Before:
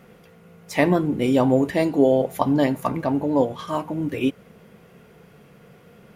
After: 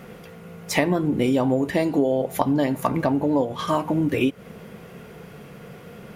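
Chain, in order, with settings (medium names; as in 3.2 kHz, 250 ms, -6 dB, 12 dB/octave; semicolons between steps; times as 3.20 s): compression 6:1, threshold -26 dBFS, peak gain reduction 13.5 dB; trim +8 dB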